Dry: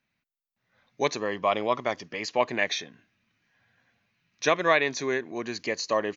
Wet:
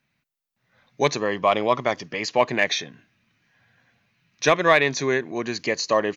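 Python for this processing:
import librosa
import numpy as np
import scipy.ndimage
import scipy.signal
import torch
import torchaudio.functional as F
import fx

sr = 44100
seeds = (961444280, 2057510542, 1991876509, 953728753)

p1 = fx.peak_eq(x, sr, hz=140.0, db=6.5, octaves=0.37)
p2 = np.clip(10.0 ** (15.5 / 20.0) * p1, -1.0, 1.0) / 10.0 ** (15.5 / 20.0)
p3 = p1 + F.gain(torch.from_numpy(p2), -7.0).numpy()
y = F.gain(torch.from_numpy(p3), 2.0).numpy()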